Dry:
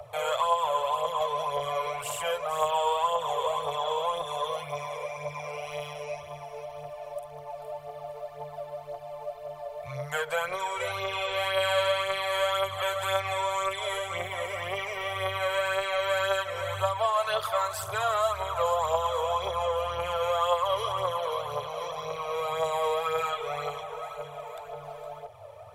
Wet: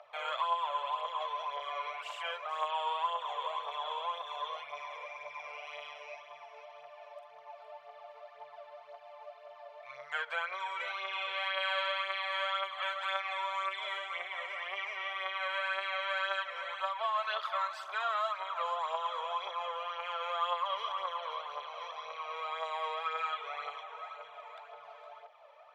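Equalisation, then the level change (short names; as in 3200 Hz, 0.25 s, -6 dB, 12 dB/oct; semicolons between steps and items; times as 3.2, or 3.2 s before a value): HPF 1200 Hz 12 dB/oct; air absorption 230 m; 0.0 dB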